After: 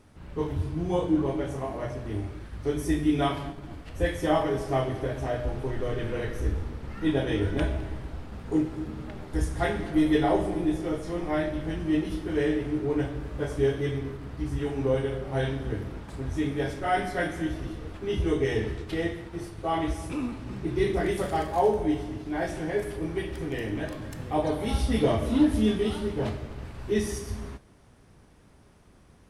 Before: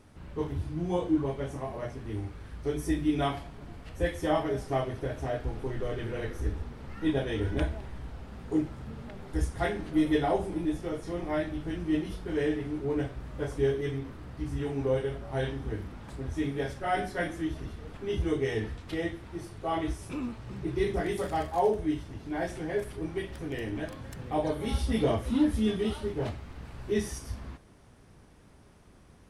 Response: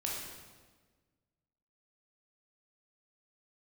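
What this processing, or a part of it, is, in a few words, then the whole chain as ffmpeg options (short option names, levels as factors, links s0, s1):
keyed gated reverb: -filter_complex "[0:a]asplit=3[s0][s1][s2];[1:a]atrim=start_sample=2205[s3];[s1][s3]afir=irnorm=-1:irlink=0[s4];[s2]apad=whole_len=1291973[s5];[s4][s5]sidechaingate=range=0.0224:threshold=0.00708:ratio=16:detection=peak,volume=0.473[s6];[s0][s6]amix=inputs=2:normalize=0"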